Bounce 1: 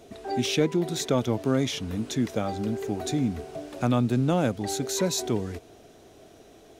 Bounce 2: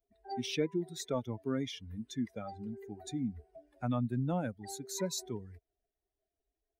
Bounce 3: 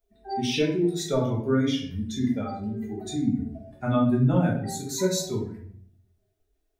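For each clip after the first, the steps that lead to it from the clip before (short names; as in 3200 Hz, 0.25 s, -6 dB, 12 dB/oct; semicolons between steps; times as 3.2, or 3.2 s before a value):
per-bin expansion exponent 2; gain -6.5 dB
shoebox room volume 86 m³, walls mixed, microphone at 1.3 m; gain +4 dB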